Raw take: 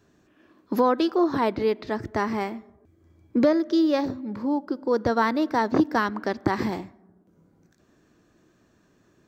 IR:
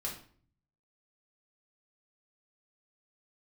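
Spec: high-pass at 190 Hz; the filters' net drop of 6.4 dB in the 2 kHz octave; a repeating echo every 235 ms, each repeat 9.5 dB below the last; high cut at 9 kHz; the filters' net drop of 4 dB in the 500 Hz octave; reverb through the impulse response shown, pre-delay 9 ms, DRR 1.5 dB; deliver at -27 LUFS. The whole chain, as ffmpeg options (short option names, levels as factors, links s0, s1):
-filter_complex "[0:a]highpass=190,lowpass=9000,equalizer=f=500:t=o:g=-4.5,equalizer=f=2000:t=o:g=-8,aecho=1:1:235|470|705|940:0.335|0.111|0.0365|0.012,asplit=2[s0][s1];[1:a]atrim=start_sample=2205,adelay=9[s2];[s1][s2]afir=irnorm=-1:irlink=0,volume=0.75[s3];[s0][s3]amix=inputs=2:normalize=0,volume=0.794"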